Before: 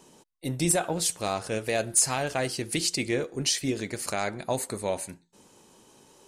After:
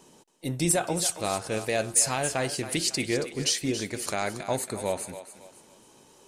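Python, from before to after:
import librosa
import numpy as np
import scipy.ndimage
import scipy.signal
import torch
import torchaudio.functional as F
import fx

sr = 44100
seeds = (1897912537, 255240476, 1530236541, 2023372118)

y = fx.echo_thinned(x, sr, ms=276, feedback_pct=40, hz=400.0, wet_db=-11)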